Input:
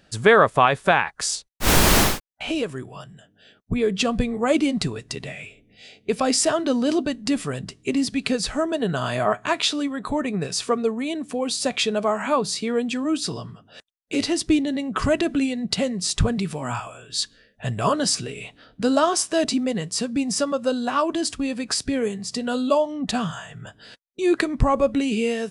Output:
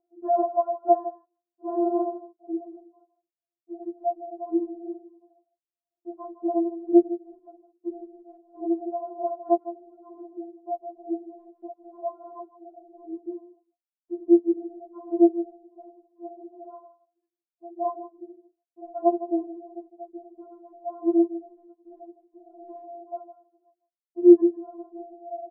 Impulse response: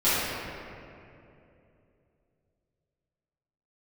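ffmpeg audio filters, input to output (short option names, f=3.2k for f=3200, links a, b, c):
-filter_complex "[0:a]afwtdn=0.0631,agate=range=-41dB:threshold=-46dB:ratio=16:detection=peak,acompressor=mode=upward:threshold=-31dB:ratio=2.5,asuperpass=centerf=480:order=12:qfactor=0.78,asplit=2[a][b];[b]adelay=157.4,volume=-14dB,highshelf=f=4k:g=-3.54[c];[a][c]amix=inputs=2:normalize=0,afftfilt=real='re*4*eq(mod(b,16),0)':imag='im*4*eq(mod(b,16),0)':win_size=2048:overlap=0.75"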